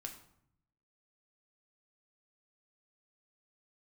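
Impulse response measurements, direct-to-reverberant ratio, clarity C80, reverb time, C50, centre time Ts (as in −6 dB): 2.5 dB, 12.5 dB, 0.70 s, 9.0 dB, 17 ms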